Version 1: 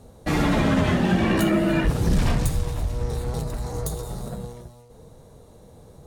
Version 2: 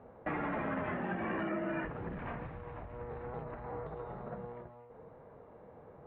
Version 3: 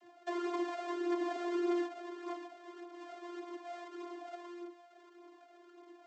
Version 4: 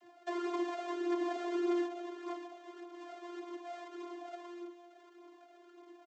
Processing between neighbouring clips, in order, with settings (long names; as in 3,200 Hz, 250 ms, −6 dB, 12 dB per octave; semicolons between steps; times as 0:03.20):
Bessel low-pass filter 1,200 Hz, order 8; downward compressor 2.5 to 1, threshold −33 dBFS, peak gain reduction 11.5 dB; spectral tilt +4.5 dB per octave; level +2 dB
each half-wave held at its own peak; channel vocoder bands 32, saw 349 Hz; flanger whose copies keep moving one way falling 1.7 Hz; level +2.5 dB
single-tap delay 241 ms −15.5 dB